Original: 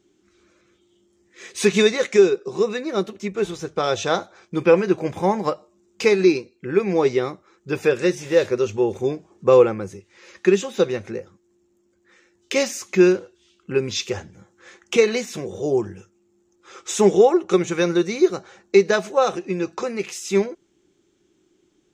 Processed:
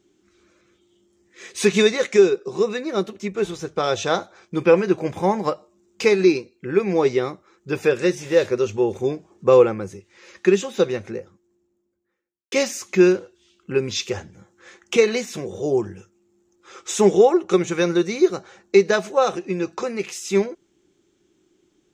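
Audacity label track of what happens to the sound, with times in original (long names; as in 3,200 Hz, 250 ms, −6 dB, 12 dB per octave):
10.920000	12.520000	fade out and dull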